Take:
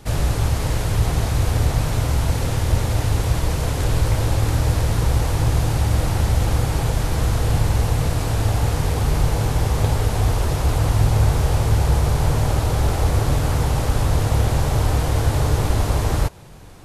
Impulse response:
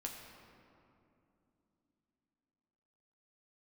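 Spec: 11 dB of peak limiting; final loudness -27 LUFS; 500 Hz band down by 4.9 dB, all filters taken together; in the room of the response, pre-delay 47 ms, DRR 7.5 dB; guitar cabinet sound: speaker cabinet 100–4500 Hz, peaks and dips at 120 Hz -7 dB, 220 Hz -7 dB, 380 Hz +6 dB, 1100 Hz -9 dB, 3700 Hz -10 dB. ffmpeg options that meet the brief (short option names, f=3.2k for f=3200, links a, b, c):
-filter_complex "[0:a]equalizer=f=500:t=o:g=-8.5,alimiter=limit=-16.5dB:level=0:latency=1,asplit=2[a][b];[1:a]atrim=start_sample=2205,adelay=47[c];[b][c]afir=irnorm=-1:irlink=0,volume=-6dB[d];[a][d]amix=inputs=2:normalize=0,highpass=100,equalizer=f=120:t=q:w=4:g=-7,equalizer=f=220:t=q:w=4:g=-7,equalizer=f=380:t=q:w=4:g=6,equalizer=f=1.1k:t=q:w=4:g=-9,equalizer=f=3.7k:t=q:w=4:g=-10,lowpass=f=4.5k:w=0.5412,lowpass=f=4.5k:w=1.3066,volume=3.5dB"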